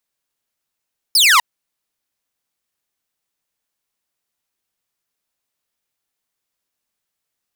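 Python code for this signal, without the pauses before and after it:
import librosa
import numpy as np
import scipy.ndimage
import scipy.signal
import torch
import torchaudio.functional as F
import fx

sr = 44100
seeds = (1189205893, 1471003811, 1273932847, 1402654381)

y = fx.laser_zap(sr, level_db=-6, start_hz=5400.0, end_hz=910.0, length_s=0.25, wave='saw')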